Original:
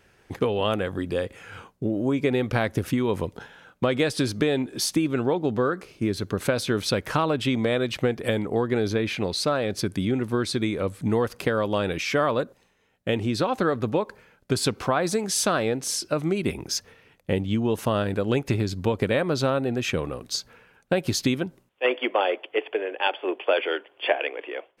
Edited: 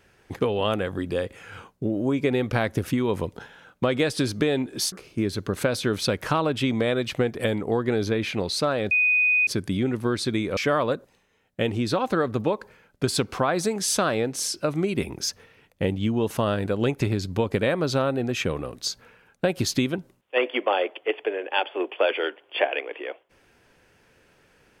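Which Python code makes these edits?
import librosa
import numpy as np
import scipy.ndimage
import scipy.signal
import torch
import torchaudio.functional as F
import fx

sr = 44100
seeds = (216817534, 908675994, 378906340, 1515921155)

y = fx.edit(x, sr, fx.cut(start_s=4.92, length_s=0.84),
    fx.insert_tone(at_s=9.75, length_s=0.56, hz=2490.0, db=-17.0),
    fx.cut(start_s=10.85, length_s=1.2), tone=tone)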